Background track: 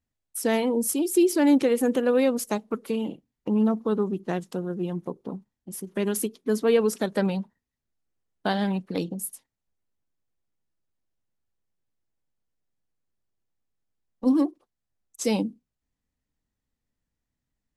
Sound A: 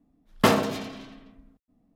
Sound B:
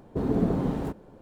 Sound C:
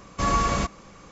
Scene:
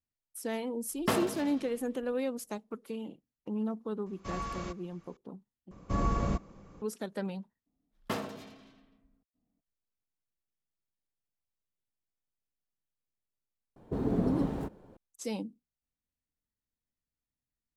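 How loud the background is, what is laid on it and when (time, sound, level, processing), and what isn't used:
background track −11.5 dB
0:00.64: mix in A −10 dB
0:04.06: mix in C −15.5 dB + low-pass filter 6,800 Hz
0:05.71: overwrite with C −10.5 dB + tilt shelving filter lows +8 dB
0:07.66: overwrite with A −15.5 dB
0:13.76: mix in B −5 dB

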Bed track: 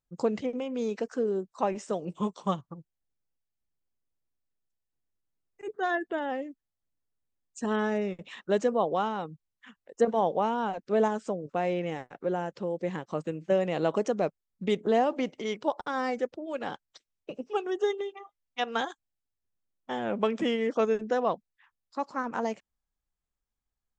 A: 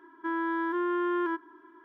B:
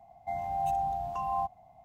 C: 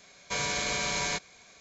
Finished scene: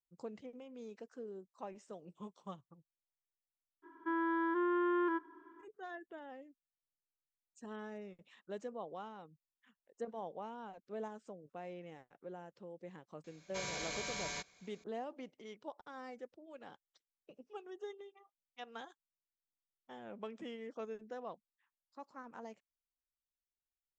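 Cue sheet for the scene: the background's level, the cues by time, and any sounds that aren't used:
bed track −18.5 dB
0:03.82: mix in A −4 dB, fades 0.02 s + high-shelf EQ 3,000 Hz −6.5 dB
0:13.24: mix in C −11.5 dB
not used: B

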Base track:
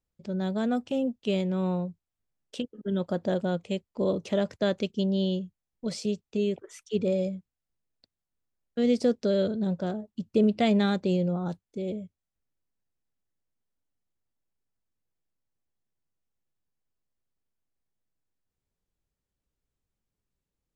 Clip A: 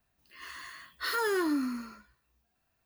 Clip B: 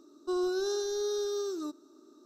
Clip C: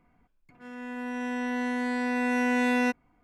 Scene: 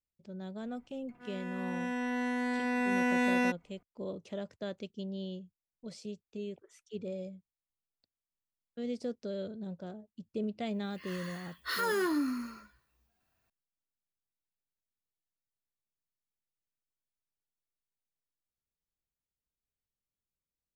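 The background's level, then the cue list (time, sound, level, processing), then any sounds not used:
base track −13 dB
0:00.60: mix in C −3.5 dB
0:10.65: mix in A −1.5 dB
not used: B

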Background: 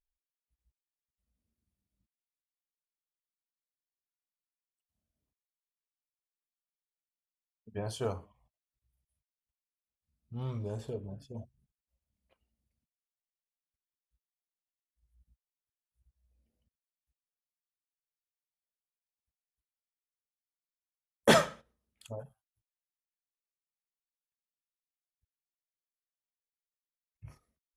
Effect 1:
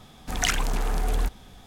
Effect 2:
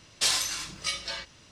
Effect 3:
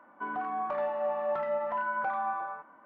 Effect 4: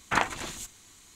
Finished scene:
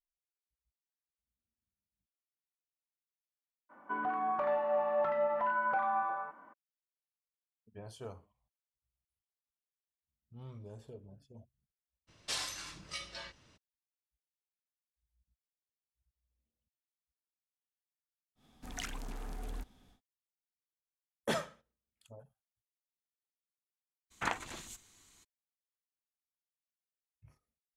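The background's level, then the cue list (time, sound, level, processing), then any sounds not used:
background −11.5 dB
0:03.69: mix in 3 −0.5 dB, fades 0.02 s
0:12.07: mix in 2 −7.5 dB, fades 0.02 s + high-shelf EQ 2,900 Hz −7 dB
0:18.35: mix in 1 −17.5 dB, fades 0.10 s + parametric band 260 Hz +7 dB 0.49 octaves
0:24.10: mix in 4 −9.5 dB, fades 0.02 s

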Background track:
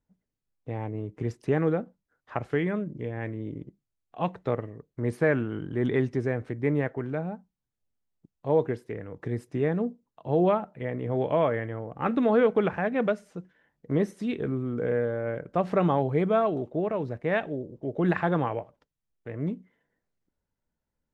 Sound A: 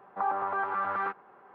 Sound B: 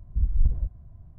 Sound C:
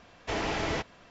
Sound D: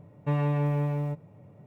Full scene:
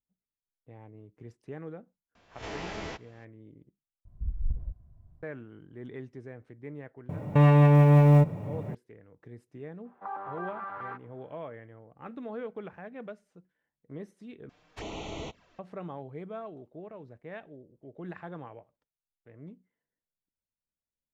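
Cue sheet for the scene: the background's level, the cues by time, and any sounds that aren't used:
background track −16.5 dB
0:02.15: mix in C −9 dB + peak hold with a rise ahead of every peak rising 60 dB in 0.33 s
0:04.05: overwrite with B −9 dB
0:07.09: mix in D −11 dB + boost into a limiter +26.5 dB
0:09.85: mix in A −8.5 dB
0:14.49: overwrite with C −6 dB + flanger swept by the level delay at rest 8.1 ms, full sweep at −29 dBFS

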